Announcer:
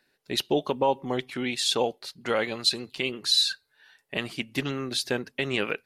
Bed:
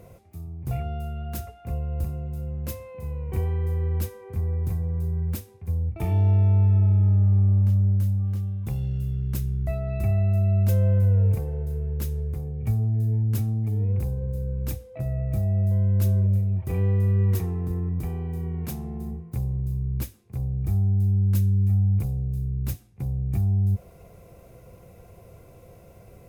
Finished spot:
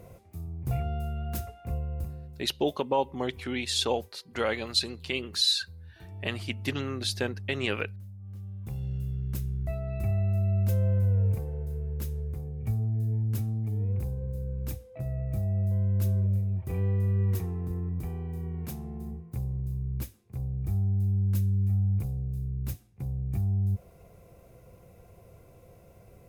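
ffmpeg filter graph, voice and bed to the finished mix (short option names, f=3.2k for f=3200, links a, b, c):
-filter_complex "[0:a]adelay=2100,volume=-2.5dB[a];[1:a]volume=15dB,afade=t=out:st=1.55:d=0.91:silence=0.1,afade=t=in:st=8.19:d=0.74:silence=0.158489[b];[a][b]amix=inputs=2:normalize=0"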